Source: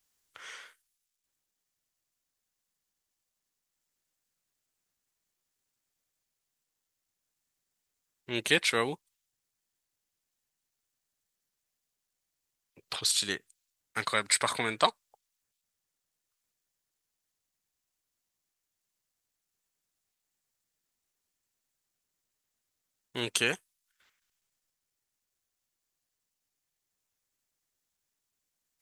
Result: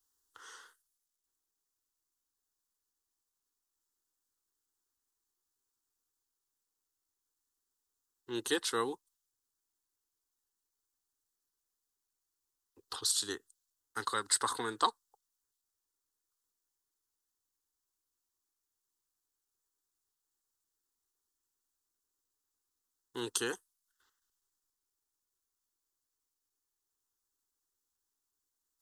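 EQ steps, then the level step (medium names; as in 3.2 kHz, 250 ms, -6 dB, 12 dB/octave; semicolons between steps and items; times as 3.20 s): static phaser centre 620 Hz, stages 6; -1.5 dB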